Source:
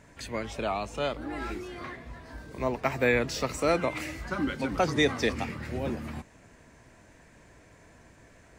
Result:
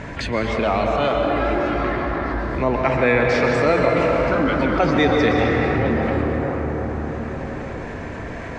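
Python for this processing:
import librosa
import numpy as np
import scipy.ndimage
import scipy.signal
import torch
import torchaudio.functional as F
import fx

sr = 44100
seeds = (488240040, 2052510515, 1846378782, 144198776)

y = scipy.signal.sosfilt(scipy.signal.butter(2, 3400.0, 'lowpass', fs=sr, output='sos'), x)
y = fx.rev_plate(y, sr, seeds[0], rt60_s=4.4, hf_ratio=0.35, predelay_ms=110, drr_db=0.0)
y = fx.env_flatten(y, sr, amount_pct=50)
y = F.gain(torch.from_numpy(y), 5.0).numpy()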